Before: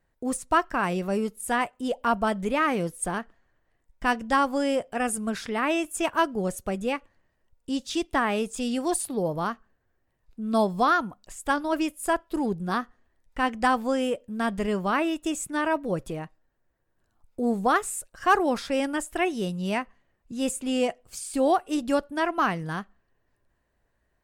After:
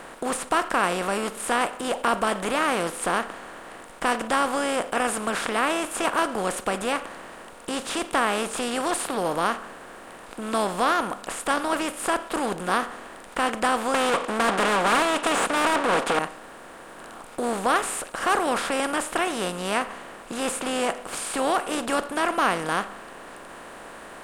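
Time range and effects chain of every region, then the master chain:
13.94–16.19 s: comb filter that takes the minimum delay 4.2 ms + low-pass 6.8 kHz + overdrive pedal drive 25 dB, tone 3.8 kHz, clips at -14.5 dBFS
whole clip: spectral levelling over time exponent 0.4; bass shelf 220 Hz -5.5 dB; trim -5 dB

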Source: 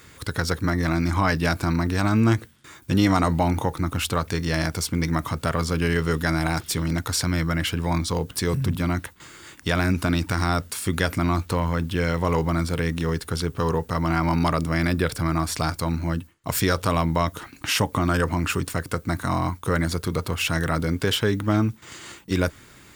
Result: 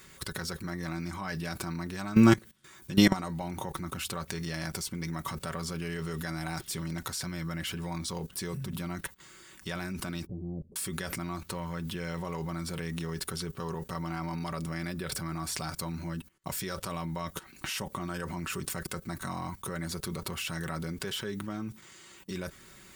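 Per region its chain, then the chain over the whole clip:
10.26–10.76 s: inverse Chebyshev low-pass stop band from 1.5 kHz, stop band 60 dB + loudspeaker Doppler distortion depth 0.27 ms
whole clip: treble shelf 5 kHz +4.5 dB; level held to a coarse grid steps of 18 dB; comb 5.3 ms, depth 56%

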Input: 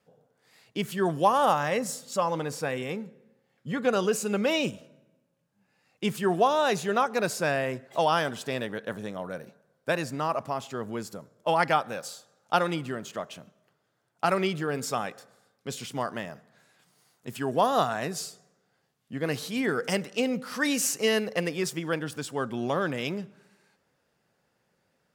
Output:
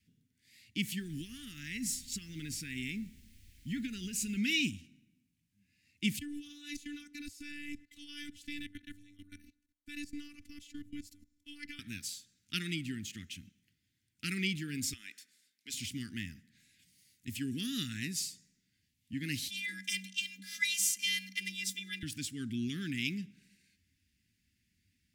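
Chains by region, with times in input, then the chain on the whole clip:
0.98–4.36 s: compression, threshold -28 dBFS + added noise pink -62 dBFS
6.19–11.79 s: robot voice 293 Hz + level held to a coarse grid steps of 18 dB
14.93–15.74 s: high-pass 510 Hz + compression 12:1, threshold -32 dBFS
19.48–22.03 s: peaking EQ 3.4 kHz +7 dB 0.22 oct + robot voice 368 Hz + frequency shift +190 Hz
whole clip: elliptic band-stop 270–2100 Hz, stop band 50 dB; resonant low shelf 110 Hz +6.5 dB, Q 3

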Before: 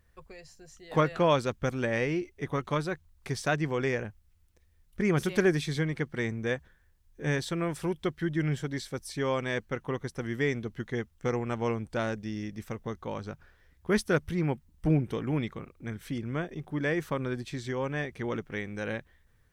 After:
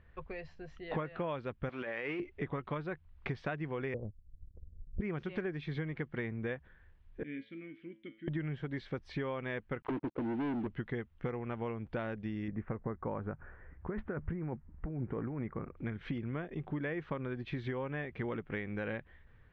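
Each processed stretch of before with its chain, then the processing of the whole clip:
1.69–2.20 s: jump at every zero crossing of -43 dBFS + frequency weighting A + compressor with a negative ratio -36 dBFS
3.94–5.01 s: steep low-pass 570 Hz + bass shelf 100 Hz +11 dB + transient shaper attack +4 dB, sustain -10 dB
7.23–8.28 s: vowel filter i + feedback comb 110 Hz, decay 0.45 s, mix 70%
9.82–10.67 s: auto-wah 290–2400 Hz, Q 5.1, down, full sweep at -32.5 dBFS + waveshaping leveller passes 5 + tape noise reduction on one side only decoder only
12.48–15.77 s: low-pass 1.8 kHz 24 dB/octave + compressor with a negative ratio -33 dBFS
whole clip: low-pass 3 kHz 24 dB/octave; compression 10:1, threshold -39 dBFS; trim +5 dB

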